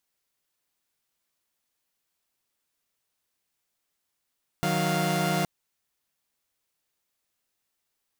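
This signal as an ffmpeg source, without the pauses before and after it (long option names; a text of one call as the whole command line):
ffmpeg -f lavfi -i "aevalsrc='0.0531*((2*mod(155.56*t,1)-1)+(2*mod(185*t,1)-1)+(2*mod(698.46*t,1)-1))':duration=0.82:sample_rate=44100" out.wav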